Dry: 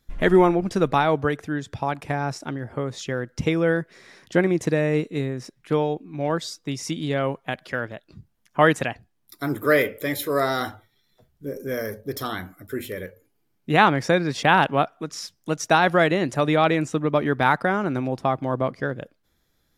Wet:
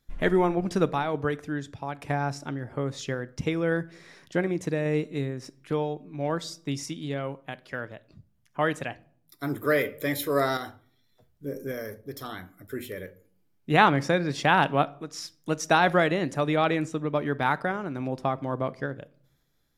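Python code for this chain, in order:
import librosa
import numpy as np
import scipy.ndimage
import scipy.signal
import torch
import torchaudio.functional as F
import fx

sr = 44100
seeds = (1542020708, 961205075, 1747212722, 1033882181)

y = fx.tremolo_random(x, sr, seeds[0], hz=3.5, depth_pct=55)
y = fx.room_shoebox(y, sr, seeds[1], volume_m3=690.0, walls='furnished', distance_m=0.34)
y = F.gain(torch.from_numpy(y), -2.5).numpy()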